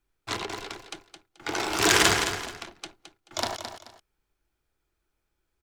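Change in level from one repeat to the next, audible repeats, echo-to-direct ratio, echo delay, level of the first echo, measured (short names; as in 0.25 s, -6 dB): -11.5 dB, 2, -8.5 dB, 0.216 s, -9.0 dB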